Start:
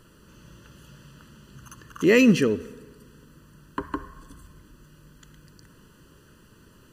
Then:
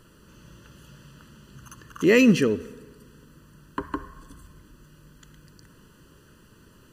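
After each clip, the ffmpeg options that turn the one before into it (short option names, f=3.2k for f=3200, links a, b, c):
-af anull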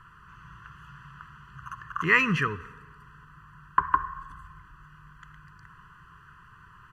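-af "firequalizer=gain_entry='entry(160,0);entry(230,-17);entry(420,-12);entry(690,-29);entry(1000,13);entry(3900,-11);entry(11000,-16)':delay=0.05:min_phase=1"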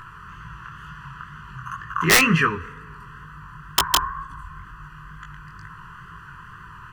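-filter_complex "[0:a]asplit=2[a][b];[b]acompressor=mode=upward:threshold=-37dB:ratio=2.5,volume=-2dB[c];[a][c]amix=inputs=2:normalize=0,aeval=exprs='(mod(2.51*val(0)+1,2)-1)/2.51':c=same,flanger=delay=18:depth=7.2:speed=2.1,volume=5dB"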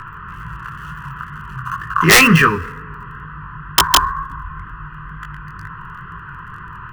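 -filter_complex "[0:a]acrossover=split=140|2900[a][b][c];[c]acrusher=bits=6:dc=4:mix=0:aa=0.000001[d];[a][b][d]amix=inputs=3:normalize=0,apsyclip=11dB,volume=-2.5dB"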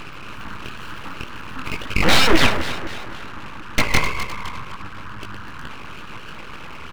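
-filter_complex "[0:a]asplit=2[a][b];[b]adelay=257,lowpass=f=3.9k:p=1,volume=-13dB,asplit=2[c][d];[d]adelay=257,lowpass=f=3.9k:p=1,volume=0.52,asplit=2[e][f];[f]adelay=257,lowpass=f=3.9k:p=1,volume=0.52,asplit=2[g][h];[h]adelay=257,lowpass=f=3.9k:p=1,volume=0.52,asplit=2[i][j];[j]adelay=257,lowpass=f=3.9k:p=1,volume=0.52[k];[a][c][e][g][i][k]amix=inputs=6:normalize=0,acrossover=split=2800[l][m];[m]acompressor=threshold=-31dB:ratio=4:attack=1:release=60[n];[l][n]amix=inputs=2:normalize=0,aeval=exprs='abs(val(0))':c=same"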